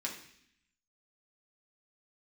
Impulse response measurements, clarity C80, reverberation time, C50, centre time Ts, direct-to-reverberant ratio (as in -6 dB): 10.0 dB, 0.65 s, 7.5 dB, 24 ms, -2.5 dB